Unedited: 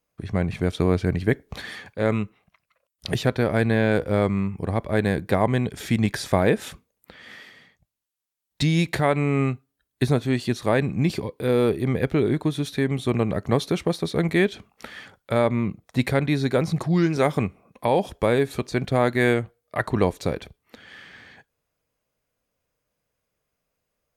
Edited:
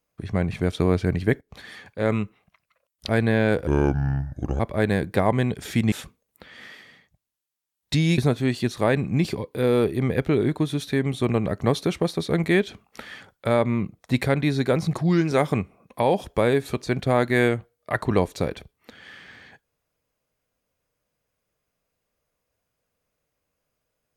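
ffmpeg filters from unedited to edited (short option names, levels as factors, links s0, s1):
-filter_complex "[0:a]asplit=7[s0][s1][s2][s3][s4][s5][s6];[s0]atrim=end=1.41,asetpts=PTS-STARTPTS,afade=t=out:st=1.406:d=0.004:c=hsin:silence=0.199526[s7];[s1]atrim=start=1.41:end=3.092,asetpts=PTS-STARTPTS,afade=t=in:d=0.72:silence=0.199526[s8];[s2]atrim=start=3.518:end=4.104[s9];[s3]atrim=start=4.1:end=4.75,asetpts=PTS-STARTPTS,asetrate=30870,aresample=44100[s10];[s4]atrim=start=4.746:end=6.072[s11];[s5]atrim=start=6.598:end=8.862[s12];[s6]atrim=start=10.028[s13];[s7][s8]concat=n=2:v=0:a=1[s14];[s14][s9]acrossfade=d=0.004:c1=hsin:c2=hsin[s15];[s15][s10]acrossfade=d=0.004:c1=hsin:c2=hsin[s16];[s16][s11]acrossfade=d=0.004:c1=hsin:c2=hsin[s17];[s17][s12]acrossfade=d=0.004:c1=hsin:c2=hsin[s18];[s18][s13]acrossfade=d=0.004:c1=hsin:c2=hsin"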